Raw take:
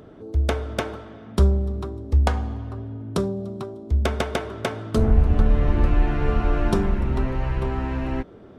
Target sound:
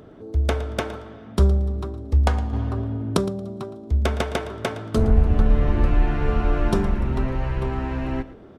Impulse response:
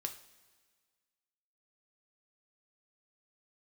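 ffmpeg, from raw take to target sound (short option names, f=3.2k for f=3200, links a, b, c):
-filter_complex "[0:a]asettb=1/sr,asplit=3[a][b][c];[a]atrim=end=2.534[d];[b]atrim=start=2.53:end=3.17,asetpts=PTS-STARTPTS,afade=t=in:d=0.004:c=qsin,afade=t=out:st=0.636:d=0.004:c=qsin,acontrast=81[e];[c]atrim=start=3.166[f];[d][e]acrossfade=d=0.004:c1=hsin:c2=qsin[g];[g][f]acrossfade=d=0.004:c1=qsin:c2=hsin,aecho=1:1:114|228:0.15|0.0314"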